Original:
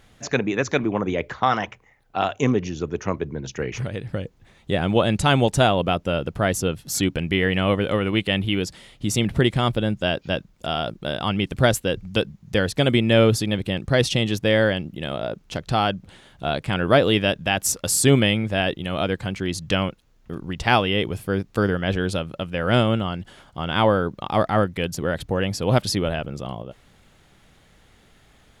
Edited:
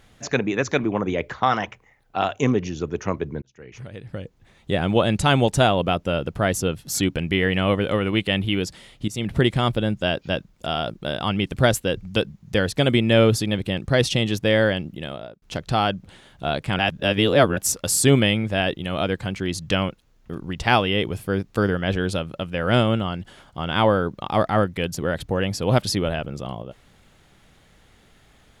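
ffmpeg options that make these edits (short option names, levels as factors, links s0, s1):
-filter_complex "[0:a]asplit=6[s0][s1][s2][s3][s4][s5];[s0]atrim=end=3.42,asetpts=PTS-STARTPTS,afade=t=out:st=3.416:d=0.004:c=hsin[s6];[s1]atrim=start=3.42:end=9.08,asetpts=PTS-STARTPTS,afade=t=in:d=1.29,afade=t=out:st=5.656:d=0.004:c=hsin:silence=0.16788[s7];[s2]atrim=start=9.08:end=15.42,asetpts=PTS-STARTPTS,afade=t=in:d=0.3:silence=0.16788,afade=t=out:st=5.83:d=0.51[s8];[s3]atrim=start=15.42:end=16.792,asetpts=PTS-STARTPTS,afade=t=in:d=0.004:c=hsin[s9];[s4]atrim=start=16.788:end=17.572,asetpts=PTS-STARTPTS,areverse[s10];[s5]atrim=start=17.568[s11];[s6][s7][s8][s9]concat=n=4:v=0:a=1[s12];[s12][s10]acrossfade=d=0.004:c1=hsin:c2=hsin[s13];[s13][s11]acrossfade=d=0.004:c1=hsin:c2=hsin"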